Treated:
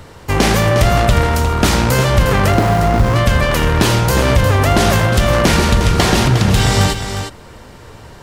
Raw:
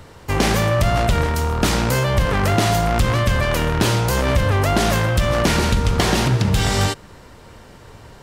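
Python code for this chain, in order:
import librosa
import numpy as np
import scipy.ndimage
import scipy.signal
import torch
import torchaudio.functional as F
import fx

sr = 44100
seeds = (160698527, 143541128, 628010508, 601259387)

y = fx.median_filter(x, sr, points=15, at=(2.52, 3.16))
y = y + 10.0 ** (-8.5 / 20.0) * np.pad(y, (int(357 * sr / 1000.0), 0))[:len(y)]
y = y * 10.0 ** (4.5 / 20.0)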